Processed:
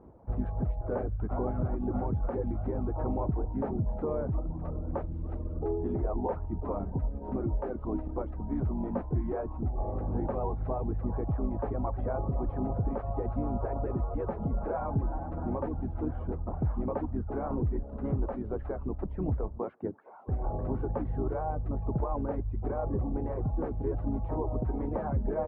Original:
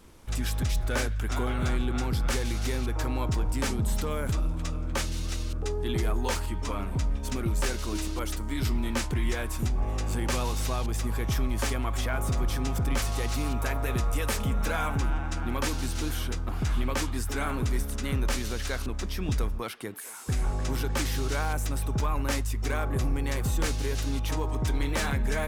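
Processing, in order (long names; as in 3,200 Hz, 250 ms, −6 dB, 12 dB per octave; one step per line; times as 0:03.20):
high-pass filter 48 Hz 12 dB per octave
reverb reduction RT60 0.88 s
brickwall limiter −23.5 dBFS, peak gain reduction 6 dB
transistor ladder low-pass 930 Hz, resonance 35%
pitch-shifted copies added −4 semitones −6 dB
level +8.5 dB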